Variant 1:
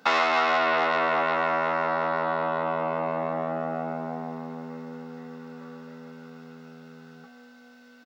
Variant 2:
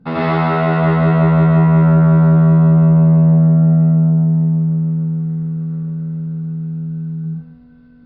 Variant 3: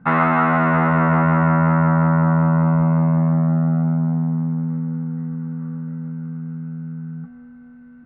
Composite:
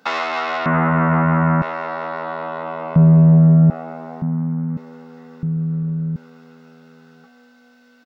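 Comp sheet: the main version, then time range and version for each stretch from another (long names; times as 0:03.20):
1
0:00.66–0:01.62: punch in from 3
0:02.96–0:03.70: punch in from 2
0:04.22–0:04.77: punch in from 3
0:05.43–0:06.16: punch in from 2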